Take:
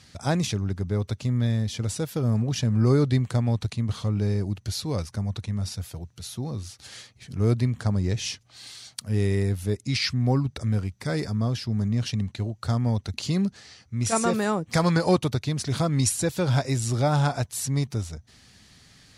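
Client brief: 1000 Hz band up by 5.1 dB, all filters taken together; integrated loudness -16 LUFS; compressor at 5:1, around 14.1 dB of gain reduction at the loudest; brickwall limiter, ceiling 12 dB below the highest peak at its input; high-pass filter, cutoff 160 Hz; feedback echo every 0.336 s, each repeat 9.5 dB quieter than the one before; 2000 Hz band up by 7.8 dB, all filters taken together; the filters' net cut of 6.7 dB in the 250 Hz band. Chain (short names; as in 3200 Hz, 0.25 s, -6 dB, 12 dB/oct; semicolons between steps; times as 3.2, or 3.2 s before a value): HPF 160 Hz; bell 250 Hz -8 dB; bell 1000 Hz +5 dB; bell 2000 Hz +8.5 dB; compressor 5:1, threshold -32 dBFS; limiter -24.5 dBFS; feedback echo 0.336 s, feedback 33%, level -9.5 dB; gain +21 dB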